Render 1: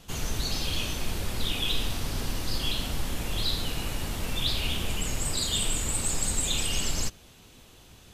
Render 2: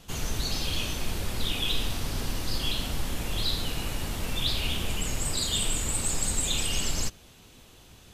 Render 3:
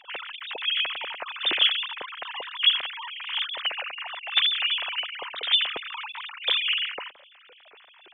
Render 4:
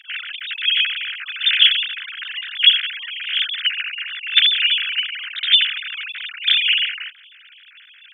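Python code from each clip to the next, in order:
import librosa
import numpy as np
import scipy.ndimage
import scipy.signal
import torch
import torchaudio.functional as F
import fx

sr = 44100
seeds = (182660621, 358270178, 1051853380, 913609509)

y1 = x
y2 = fx.sine_speech(y1, sr)
y2 = y2 * 10.0 ** (-1.0 / 20.0)
y3 = scipy.signal.sosfilt(scipy.signal.cheby1(5, 1.0, 1500.0, 'highpass', fs=sr, output='sos'), y2)
y3 = y3 * 10.0 ** (8.5 / 20.0)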